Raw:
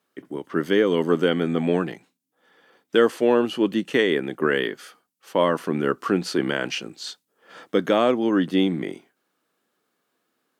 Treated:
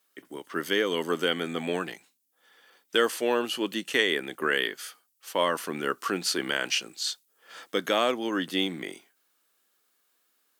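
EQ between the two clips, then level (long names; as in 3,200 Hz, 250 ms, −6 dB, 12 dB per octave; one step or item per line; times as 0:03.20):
spectral tilt +3.5 dB per octave
−3.5 dB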